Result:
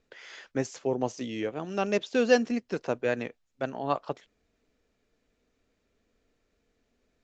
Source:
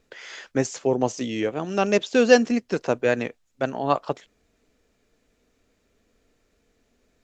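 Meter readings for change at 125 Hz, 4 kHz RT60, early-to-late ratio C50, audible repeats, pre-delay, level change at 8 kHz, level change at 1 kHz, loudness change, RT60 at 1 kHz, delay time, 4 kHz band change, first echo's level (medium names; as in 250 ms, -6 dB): -6.5 dB, no reverb, no reverb, no echo, no reverb, no reading, -6.5 dB, -6.5 dB, no reverb, no echo, -7.0 dB, no echo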